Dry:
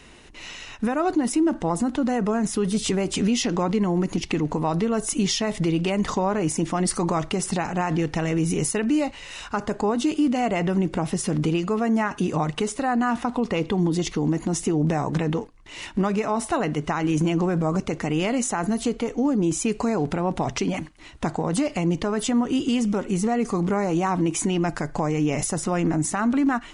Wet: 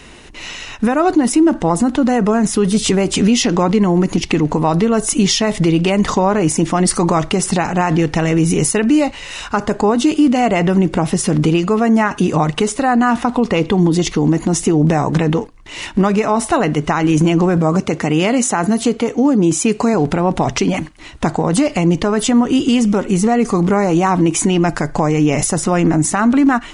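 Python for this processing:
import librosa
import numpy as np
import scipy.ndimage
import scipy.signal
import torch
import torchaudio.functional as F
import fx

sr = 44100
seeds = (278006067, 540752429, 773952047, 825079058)

y = fx.highpass(x, sr, hz=88.0, slope=12, at=(17.57, 19.94))
y = y * librosa.db_to_amplitude(9.0)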